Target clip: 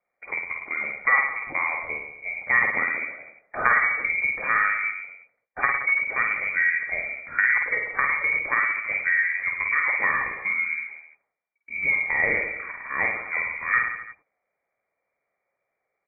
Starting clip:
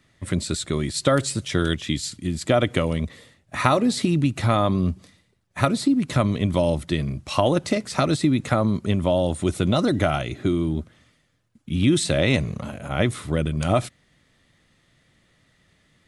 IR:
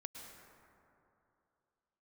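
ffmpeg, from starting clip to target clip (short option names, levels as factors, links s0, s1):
-filter_complex "[0:a]highpass=f=450:p=1,agate=range=0.178:threshold=0.00251:ratio=16:detection=peak,asplit=2[s0][s1];[s1]aecho=0:1:50|107.5|173.6|249.7|337.1:0.631|0.398|0.251|0.158|0.1[s2];[s0][s2]amix=inputs=2:normalize=0,lowpass=f=2100:t=q:w=0.5098,lowpass=f=2100:t=q:w=0.6013,lowpass=f=2100:t=q:w=0.9,lowpass=f=2100:t=q:w=2.563,afreqshift=-2500"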